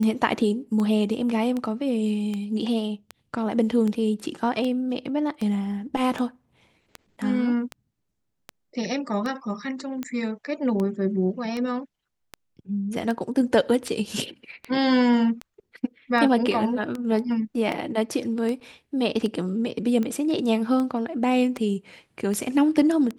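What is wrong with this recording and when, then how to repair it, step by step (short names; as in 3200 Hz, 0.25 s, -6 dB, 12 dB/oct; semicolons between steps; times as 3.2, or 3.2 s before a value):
tick 78 rpm -17 dBFS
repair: de-click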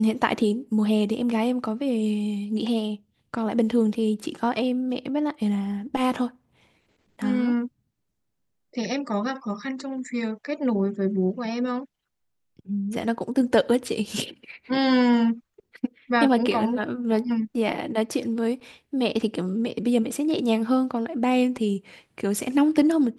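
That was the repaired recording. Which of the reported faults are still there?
none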